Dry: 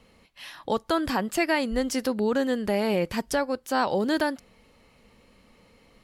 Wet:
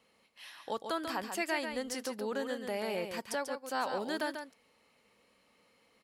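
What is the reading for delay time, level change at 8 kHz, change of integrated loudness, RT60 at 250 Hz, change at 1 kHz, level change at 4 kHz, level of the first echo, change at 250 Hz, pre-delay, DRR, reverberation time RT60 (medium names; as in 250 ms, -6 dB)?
141 ms, -6.5 dB, -10.0 dB, no reverb, -8.5 dB, -7.0 dB, -7.0 dB, -13.5 dB, no reverb, no reverb, no reverb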